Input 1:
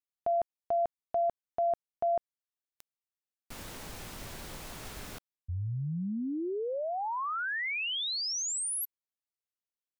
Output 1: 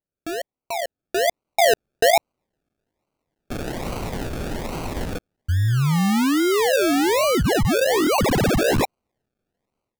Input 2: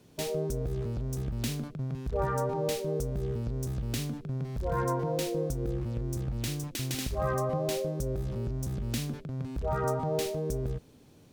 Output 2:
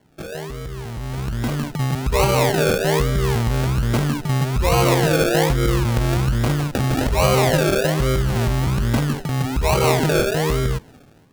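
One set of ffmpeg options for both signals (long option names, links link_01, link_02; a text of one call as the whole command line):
ffmpeg -i in.wav -filter_complex "[0:a]asplit=2[link_01][link_02];[link_02]asoftclip=type=tanh:threshold=-33.5dB,volume=-7dB[link_03];[link_01][link_03]amix=inputs=2:normalize=0,acrusher=samples=35:mix=1:aa=0.000001:lfo=1:lforange=21:lforate=1.2,dynaudnorm=framelen=890:gausssize=3:maxgain=15dB,volume=-2.5dB" out.wav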